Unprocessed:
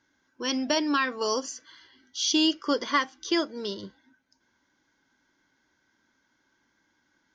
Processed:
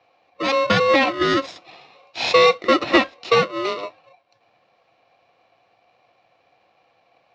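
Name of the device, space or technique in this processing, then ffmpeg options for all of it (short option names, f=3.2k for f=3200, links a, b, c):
ring modulator pedal into a guitar cabinet: -af "aeval=exprs='val(0)*sgn(sin(2*PI*810*n/s))':c=same,highpass=100,equalizer=f=110:t=q:w=4:g=6,equalizer=f=340:t=q:w=4:g=6,equalizer=f=500:t=q:w=4:g=4,equalizer=f=710:t=q:w=4:g=9,lowpass=f=4.2k:w=0.5412,lowpass=f=4.2k:w=1.3066,volume=7dB"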